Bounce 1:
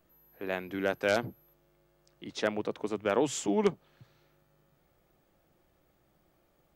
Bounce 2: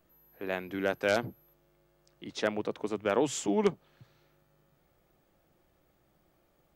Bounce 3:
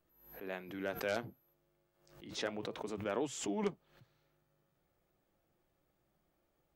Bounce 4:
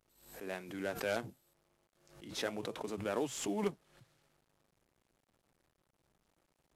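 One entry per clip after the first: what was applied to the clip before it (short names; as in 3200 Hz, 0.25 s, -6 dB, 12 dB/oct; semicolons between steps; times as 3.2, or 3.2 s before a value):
nothing audible
flange 0.3 Hz, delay 2.1 ms, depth 9.4 ms, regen -67%; backwards sustainer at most 91 dB/s; gain -5 dB
CVSD 64 kbps; gain +1 dB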